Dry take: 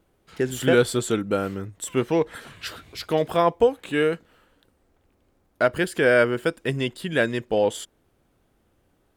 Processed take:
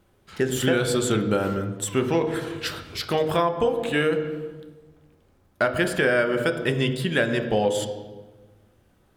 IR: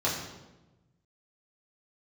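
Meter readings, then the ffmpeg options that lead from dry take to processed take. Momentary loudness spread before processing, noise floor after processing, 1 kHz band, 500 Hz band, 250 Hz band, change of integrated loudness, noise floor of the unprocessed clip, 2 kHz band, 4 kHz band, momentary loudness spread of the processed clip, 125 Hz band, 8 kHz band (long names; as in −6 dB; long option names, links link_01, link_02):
16 LU, −62 dBFS, 0.0 dB, −1.5 dB, +1.0 dB, −1.0 dB, −67 dBFS, +0.5 dB, +2.5 dB, 9 LU, +2.5 dB, +2.5 dB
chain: -filter_complex "[0:a]asplit=2[link_01][link_02];[1:a]atrim=start_sample=2205,asetrate=37485,aresample=44100,highshelf=frequency=9200:gain=-11.5[link_03];[link_02][link_03]afir=irnorm=-1:irlink=0,volume=-16dB[link_04];[link_01][link_04]amix=inputs=2:normalize=0,acompressor=threshold=-20dB:ratio=6,volume=2.5dB"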